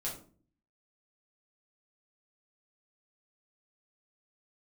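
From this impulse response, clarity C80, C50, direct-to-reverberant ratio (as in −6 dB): 12.0 dB, 7.0 dB, −5.0 dB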